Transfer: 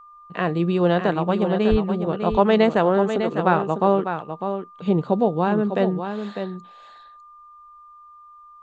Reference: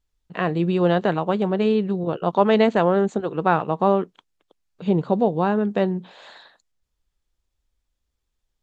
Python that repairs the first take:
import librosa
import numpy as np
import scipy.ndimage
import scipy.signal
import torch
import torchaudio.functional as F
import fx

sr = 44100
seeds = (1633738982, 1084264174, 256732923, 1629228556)

y = fx.notch(x, sr, hz=1200.0, q=30.0)
y = fx.highpass(y, sr, hz=140.0, slope=24, at=(1.7, 1.82), fade=0.02)
y = fx.fix_echo_inverse(y, sr, delay_ms=601, level_db=-8.0)